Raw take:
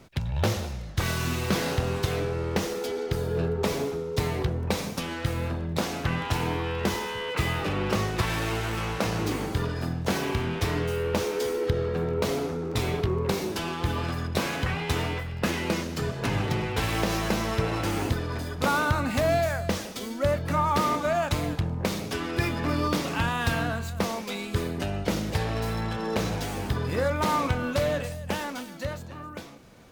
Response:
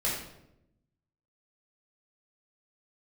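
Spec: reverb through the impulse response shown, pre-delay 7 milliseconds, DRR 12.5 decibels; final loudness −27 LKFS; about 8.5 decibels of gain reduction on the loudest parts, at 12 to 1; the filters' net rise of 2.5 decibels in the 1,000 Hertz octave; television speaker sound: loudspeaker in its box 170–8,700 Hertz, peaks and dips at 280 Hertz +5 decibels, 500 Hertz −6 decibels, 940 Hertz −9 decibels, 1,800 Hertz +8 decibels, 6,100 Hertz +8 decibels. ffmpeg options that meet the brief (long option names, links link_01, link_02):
-filter_complex "[0:a]equalizer=frequency=1000:width_type=o:gain=7.5,acompressor=threshold=-25dB:ratio=12,asplit=2[link_01][link_02];[1:a]atrim=start_sample=2205,adelay=7[link_03];[link_02][link_03]afir=irnorm=-1:irlink=0,volume=-20.5dB[link_04];[link_01][link_04]amix=inputs=2:normalize=0,highpass=frequency=170:width=0.5412,highpass=frequency=170:width=1.3066,equalizer=frequency=280:width_type=q:width=4:gain=5,equalizer=frequency=500:width_type=q:width=4:gain=-6,equalizer=frequency=940:width_type=q:width=4:gain=-9,equalizer=frequency=1800:width_type=q:width=4:gain=8,equalizer=frequency=6100:width_type=q:width=4:gain=8,lowpass=frequency=8700:width=0.5412,lowpass=frequency=8700:width=1.3066,volume=4dB"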